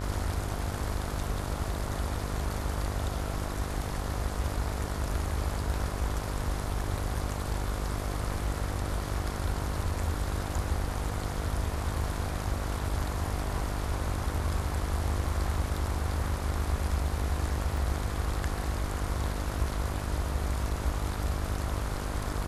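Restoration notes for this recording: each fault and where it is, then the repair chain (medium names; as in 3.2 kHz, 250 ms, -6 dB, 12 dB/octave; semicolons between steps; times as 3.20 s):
buzz 50 Hz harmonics 30 -35 dBFS
17.77 s: dropout 2.2 ms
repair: de-hum 50 Hz, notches 30; interpolate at 17.77 s, 2.2 ms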